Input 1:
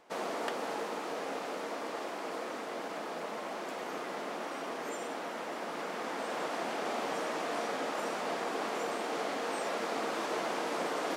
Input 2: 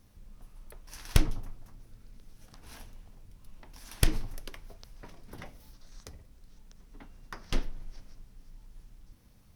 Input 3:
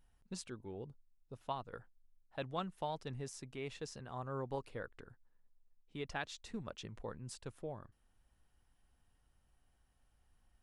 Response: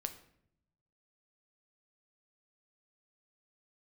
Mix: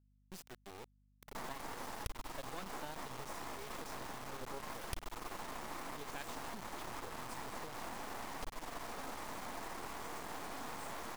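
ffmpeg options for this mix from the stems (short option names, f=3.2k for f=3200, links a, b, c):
-filter_complex "[0:a]equalizer=f=125:t=o:w=1:g=8,equalizer=f=250:t=o:w=1:g=6,equalizer=f=500:t=o:w=1:g=-4,equalizer=f=1k:t=o:w=1:g=12,equalizer=f=2k:t=o:w=1:g=-4,equalizer=f=8k:t=o:w=1:g=6,alimiter=level_in=3dB:limit=-24dB:level=0:latency=1:release=88,volume=-3dB,adelay=1250,volume=-1.5dB[a];[1:a]equalizer=f=230:w=2.3:g=-13.5,adelay=900,volume=-5dB[b];[2:a]volume=-3.5dB,asplit=2[c][d];[d]apad=whole_len=547721[e];[a][e]sidechaincompress=threshold=-53dB:ratio=8:attack=39:release=104[f];[f][b]amix=inputs=2:normalize=0,acompressor=threshold=-39dB:ratio=4,volume=0dB[g];[c][g]amix=inputs=2:normalize=0,acrusher=bits=5:dc=4:mix=0:aa=0.000001,aeval=exprs='val(0)+0.000316*(sin(2*PI*50*n/s)+sin(2*PI*2*50*n/s)/2+sin(2*PI*3*50*n/s)/3+sin(2*PI*4*50*n/s)/4+sin(2*PI*5*50*n/s)/5)':c=same"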